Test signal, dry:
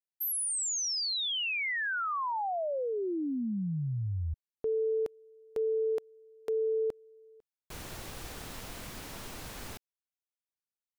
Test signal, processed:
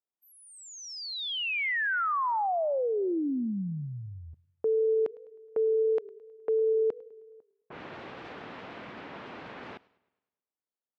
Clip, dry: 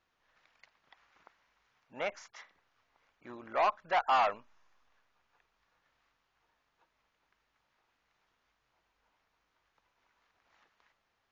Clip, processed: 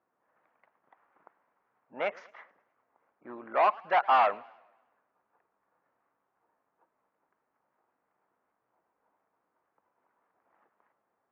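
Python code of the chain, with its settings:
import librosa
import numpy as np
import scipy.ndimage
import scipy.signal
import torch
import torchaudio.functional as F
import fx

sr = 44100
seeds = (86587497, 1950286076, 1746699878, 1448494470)

y = fx.env_lowpass(x, sr, base_hz=1000.0, full_db=-32.5)
y = fx.bandpass_edges(y, sr, low_hz=210.0, high_hz=2600.0)
y = fx.echo_warbled(y, sr, ms=105, feedback_pct=49, rate_hz=2.8, cents=167, wet_db=-23.5)
y = F.gain(torch.from_numpy(y), 4.5).numpy()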